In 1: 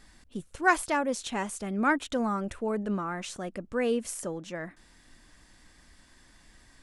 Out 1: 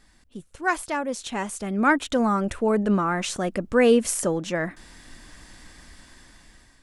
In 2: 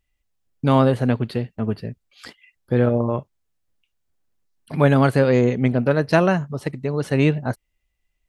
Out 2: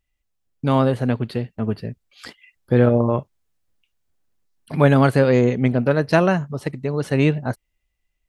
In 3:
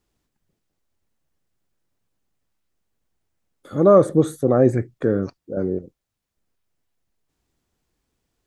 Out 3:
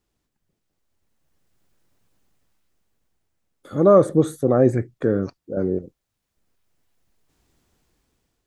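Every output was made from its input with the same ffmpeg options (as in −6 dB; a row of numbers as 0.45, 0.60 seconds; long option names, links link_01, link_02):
-af "dynaudnorm=framelen=550:gausssize=5:maxgain=13dB,volume=-2dB"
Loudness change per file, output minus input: +6.5, +0.5, −0.5 LU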